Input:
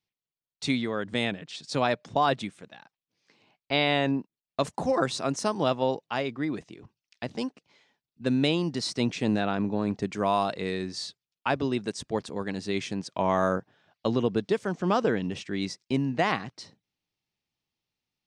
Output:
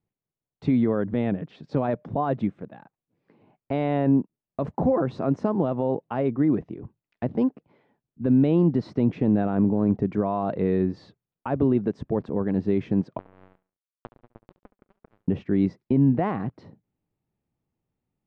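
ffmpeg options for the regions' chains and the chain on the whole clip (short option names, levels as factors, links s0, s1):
-filter_complex "[0:a]asettb=1/sr,asplit=3[s0][s1][s2];[s0]atrim=end=13.184[s3];[s1]atrim=start=13.18:end=15.28,asetpts=PTS-STARTPTS,afade=t=in:d=0.004:c=qsin,afade=t=out:st=2.096:d=0.004:c=qsin,acompressor=threshold=0.0126:ratio=16:attack=3.2:release=140:knee=1:detection=peak,acrusher=bits=4:mix=0:aa=0.5,aecho=1:1:70|140|210:0.133|0.0467|0.0163,atrim=end_sample=92610[s4];[s2]atrim=start=15.276[s5];[s3][s4]acrossfade=d=0.004:c1=hsin:c2=qsin[s6];[s6][s5]acrossfade=d=0.004:c1=qsin:c2=hsin,lowpass=1900,alimiter=limit=0.0841:level=0:latency=1:release=66,tiltshelf=f=970:g=8.5,volume=1.41"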